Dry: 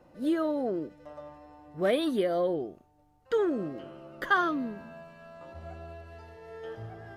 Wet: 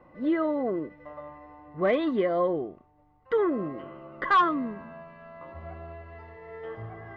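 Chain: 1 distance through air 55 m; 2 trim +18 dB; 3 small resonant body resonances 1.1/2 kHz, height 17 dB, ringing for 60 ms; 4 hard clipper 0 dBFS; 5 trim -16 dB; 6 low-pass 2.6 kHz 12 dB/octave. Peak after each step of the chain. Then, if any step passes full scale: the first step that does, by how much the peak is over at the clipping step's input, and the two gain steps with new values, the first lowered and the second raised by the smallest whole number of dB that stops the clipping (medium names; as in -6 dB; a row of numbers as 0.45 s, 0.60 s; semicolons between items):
-14.0 dBFS, +4.0 dBFS, +9.5 dBFS, 0.0 dBFS, -16.0 dBFS, -15.5 dBFS; step 2, 9.5 dB; step 2 +8 dB, step 5 -6 dB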